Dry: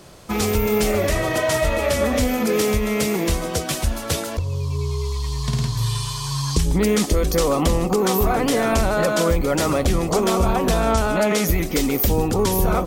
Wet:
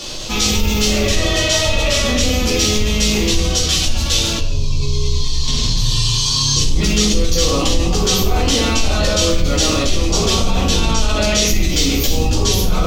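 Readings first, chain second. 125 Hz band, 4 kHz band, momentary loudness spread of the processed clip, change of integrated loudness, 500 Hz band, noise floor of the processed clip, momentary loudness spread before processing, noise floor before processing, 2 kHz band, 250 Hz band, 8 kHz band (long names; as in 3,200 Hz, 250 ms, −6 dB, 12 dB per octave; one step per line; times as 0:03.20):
+4.0 dB, +13.0 dB, 3 LU, +4.5 dB, −1.0 dB, −18 dBFS, 6 LU, −29 dBFS, +4.0 dB, +1.5 dB, +9.5 dB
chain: sub-octave generator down 2 octaves, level 0 dB
flat-topped bell 4,300 Hz +14.5 dB
rectangular room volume 170 cubic metres, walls mixed, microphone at 2.4 metres
envelope flattener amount 50%
level −14 dB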